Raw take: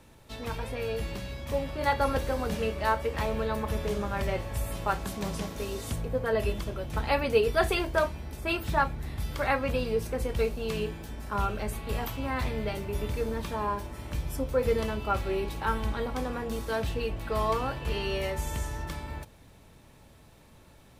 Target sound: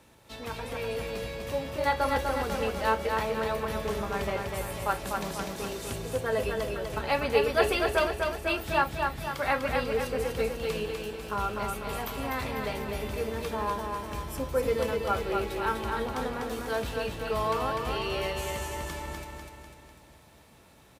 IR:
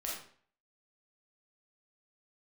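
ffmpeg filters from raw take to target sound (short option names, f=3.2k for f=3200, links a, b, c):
-af "highpass=40,lowshelf=f=220:g=-6.5,aecho=1:1:248|496|744|992|1240|1488|1736:0.631|0.328|0.171|0.0887|0.0461|0.024|0.0125"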